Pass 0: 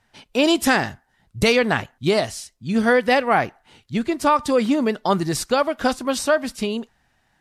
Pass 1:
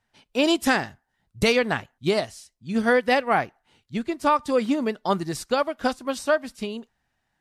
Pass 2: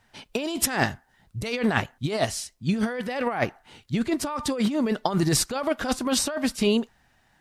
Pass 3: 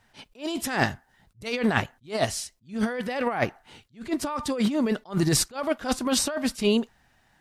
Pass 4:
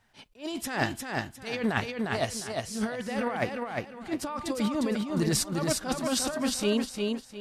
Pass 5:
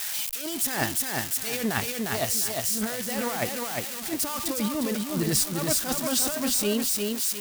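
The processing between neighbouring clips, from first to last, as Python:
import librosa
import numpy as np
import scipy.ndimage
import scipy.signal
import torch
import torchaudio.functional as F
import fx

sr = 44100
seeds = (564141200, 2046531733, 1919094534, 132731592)

y1 = fx.upward_expand(x, sr, threshold_db=-30.0, expansion=1.5)
y1 = y1 * librosa.db_to_amplitude(-2.5)
y2 = fx.over_compress(y1, sr, threshold_db=-30.0, ratio=-1.0)
y2 = y2 * librosa.db_to_amplitude(5.0)
y3 = fx.attack_slew(y2, sr, db_per_s=250.0)
y4 = fx.echo_feedback(y3, sr, ms=354, feedback_pct=29, wet_db=-3.5)
y4 = y4 * librosa.db_to_amplitude(-4.5)
y5 = y4 + 0.5 * 10.0 ** (-20.5 / 20.0) * np.diff(np.sign(y4), prepend=np.sign(y4[:1]))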